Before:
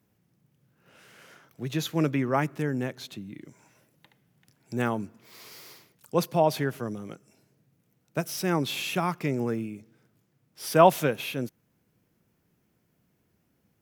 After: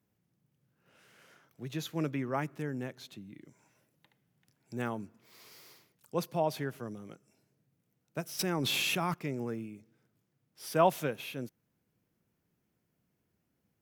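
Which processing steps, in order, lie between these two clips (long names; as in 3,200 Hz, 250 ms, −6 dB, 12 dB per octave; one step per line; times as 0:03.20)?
0:08.39–0:09.14: envelope flattener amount 100%
level −8 dB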